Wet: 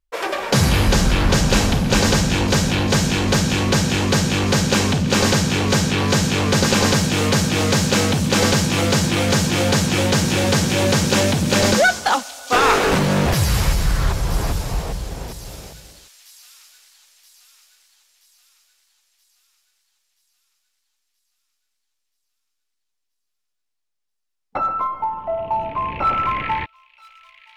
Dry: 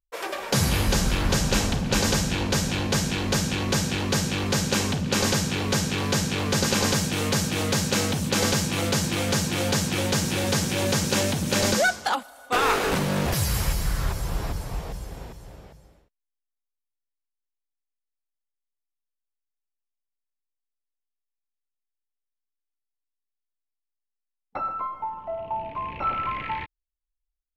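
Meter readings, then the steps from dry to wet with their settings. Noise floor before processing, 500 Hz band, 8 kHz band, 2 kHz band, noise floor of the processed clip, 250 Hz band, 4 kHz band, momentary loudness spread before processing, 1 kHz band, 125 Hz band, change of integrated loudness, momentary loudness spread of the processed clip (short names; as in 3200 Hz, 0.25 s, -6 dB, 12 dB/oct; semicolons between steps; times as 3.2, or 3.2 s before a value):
-84 dBFS, +7.0 dB, +4.5 dB, +7.0 dB, -76 dBFS, +7.5 dB, +6.0 dB, 10 LU, +7.5 dB, +7.5 dB, +6.5 dB, 9 LU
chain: high shelf 7700 Hz -8.5 dB; in parallel at -9 dB: hard clip -24.5 dBFS, distortion -9 dB; on the sum: thin delay 0.977 s, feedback 53%, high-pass 4300 Hz, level -8 dB; gain +5.5 dB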